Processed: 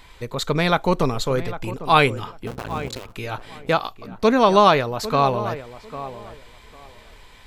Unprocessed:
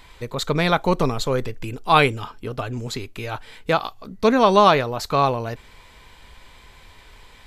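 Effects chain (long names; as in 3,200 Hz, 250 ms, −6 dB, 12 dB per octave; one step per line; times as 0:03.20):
0:02.47–0:03.13: sub-harmonics by changed cycles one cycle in 2, muted
tape delay 800 ms, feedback 22%, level −12 dB, low-pass 1,500 Hz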